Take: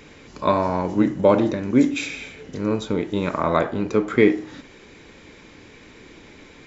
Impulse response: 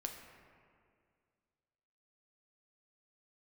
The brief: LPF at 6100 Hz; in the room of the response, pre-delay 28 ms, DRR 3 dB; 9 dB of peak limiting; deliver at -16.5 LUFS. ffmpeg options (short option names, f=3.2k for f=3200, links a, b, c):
-filter_complex "[0:a]lowpass=6.1k,alimiter=limit=-11.5dB:level=0:latency=1,asplit=2[a][b];[1:a]atrim=start_sample=2205,adelay=28[c];[b][c]afir=irnorm=-1:irlink=0,volume=-1.5dB[d];[a][d]amix=inputs=2:normalize=0,volume=6dB"